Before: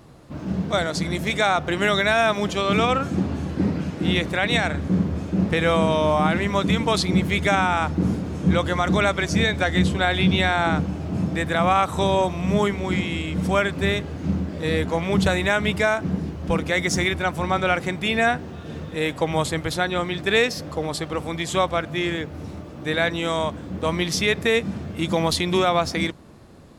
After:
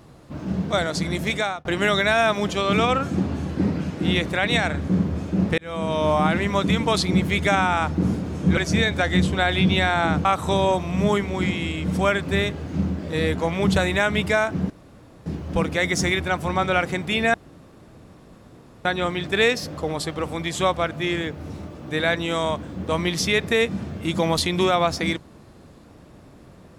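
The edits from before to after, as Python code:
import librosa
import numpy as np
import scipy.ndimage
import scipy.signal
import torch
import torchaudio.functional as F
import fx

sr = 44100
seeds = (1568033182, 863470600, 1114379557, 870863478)

y = fx.edit(x, sr, fx.fade_out_span(start_s=1.31, length_s=0.34),
    fx.fade_in_span(start_s=5.58, length_s=0.52),
    fx.cut(start_s=8.57, length_s=0.62),
    fx.cut(start_s=10.87, length_s=0.88),
    fx.insert_room_tone(at_s=16.2, length_s=0.56),
    fx.room_tone_fill(start_s=18.28, length_s=1.51), tone=tone)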